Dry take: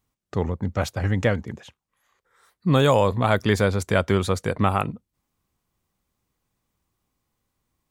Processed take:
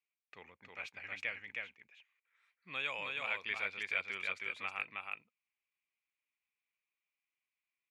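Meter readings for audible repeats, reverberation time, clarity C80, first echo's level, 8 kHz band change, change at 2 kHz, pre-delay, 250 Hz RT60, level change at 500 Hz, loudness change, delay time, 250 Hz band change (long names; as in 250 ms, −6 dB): 1, no reverb audible, no reverb audible, −3.0 dB, below −20 dB, −7.0 dB, no reverb audible, no reverb audible, −28.5 dB, −16.5 dB, 317 ms, −36.0 dB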